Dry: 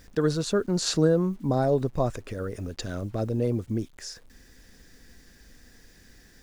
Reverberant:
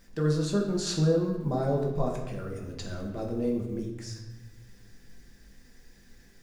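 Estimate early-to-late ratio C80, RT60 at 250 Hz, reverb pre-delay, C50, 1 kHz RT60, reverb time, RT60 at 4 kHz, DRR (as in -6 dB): 7.0 dB, 1.7 s, 5 ms, 5.0 dB, 1.1 s, 1.2 s, 0.85 s, -1.5 dB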